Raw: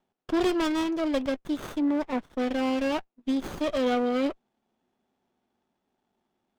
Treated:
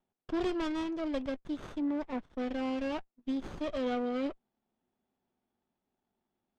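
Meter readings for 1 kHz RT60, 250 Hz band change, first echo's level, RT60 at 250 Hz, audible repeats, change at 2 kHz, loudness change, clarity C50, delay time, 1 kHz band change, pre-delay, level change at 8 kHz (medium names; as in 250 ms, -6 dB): no reverb, -7.0 dB, no echo, no reverb, no echo, -8.5 dB, -7.5 dB, no reverb, no echo, -8.0 dB, no reverb, under -10 dB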